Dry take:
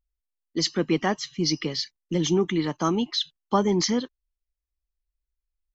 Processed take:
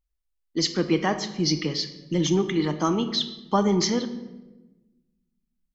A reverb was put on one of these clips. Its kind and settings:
rectangular room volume 610 cubic metres, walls mixed, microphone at 0.54 metres

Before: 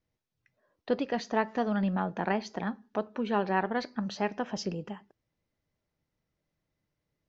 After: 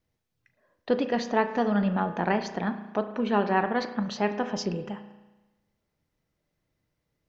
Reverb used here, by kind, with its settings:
spring reverb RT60 1.1 s, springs 34 ms, chirp 75 ms, DRR 9 dB
level +3.5 dB

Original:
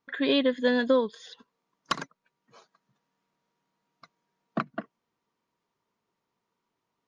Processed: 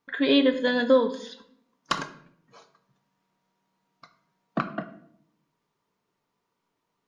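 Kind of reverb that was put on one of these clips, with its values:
rectangular room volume 120 cubic metres, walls mixed, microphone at 0.37 metres
level +2 dB

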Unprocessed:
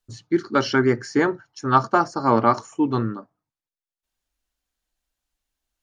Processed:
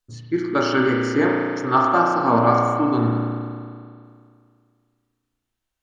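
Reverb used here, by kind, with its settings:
spring reverb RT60 2.2 s, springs 34 ms, chirp 70 ms, DRR −2 dB
level −2 dB

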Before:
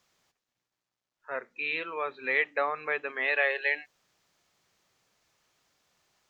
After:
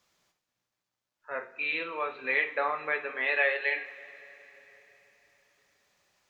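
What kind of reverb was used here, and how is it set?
coupled-rooms reverb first 0.36 s, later 4 s, from −20 dB, DRR 3.5 dB
level −1.5 dB

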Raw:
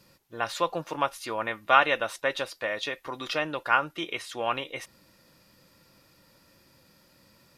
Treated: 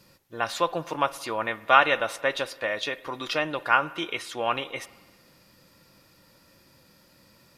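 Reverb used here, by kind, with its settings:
spring reverb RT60 1.4 s, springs 56 ms, chirp 50 ms, DRR 18 dB
level +2 dB

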